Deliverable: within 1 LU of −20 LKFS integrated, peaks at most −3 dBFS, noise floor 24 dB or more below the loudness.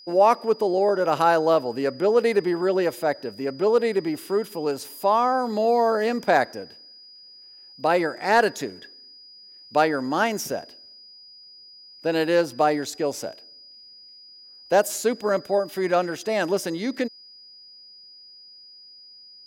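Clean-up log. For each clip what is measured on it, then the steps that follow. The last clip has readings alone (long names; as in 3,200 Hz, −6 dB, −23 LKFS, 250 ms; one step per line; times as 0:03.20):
interfering tone 4,900 Hz; level of the tone −45 dBFS; integrated loudness −23.0 LKFS; sample peak −7.0 dBFS; target loudness −20.0 LKFS
→ notch filter 4,900 Hz, Q 30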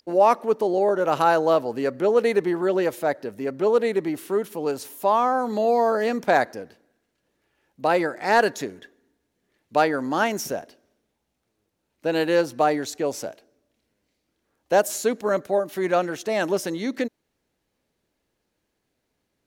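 interfering tone none found; integrated loudness −23.0 LKFS; sample peak −7.0 dBFS; target loudness −20.0 LKFS
→ level +3 dB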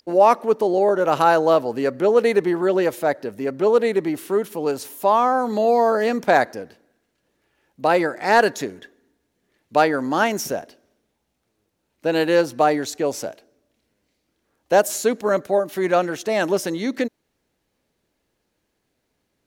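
integrated loudness −20.0 LKFS; sample peak −4.0 dBFS; background noise floor −74 dBFS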